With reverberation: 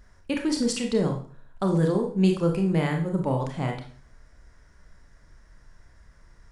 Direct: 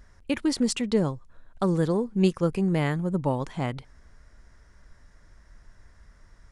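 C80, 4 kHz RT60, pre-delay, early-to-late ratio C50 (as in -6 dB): 12.5 dB, 0.40 s, 26 ms, 7.0 dB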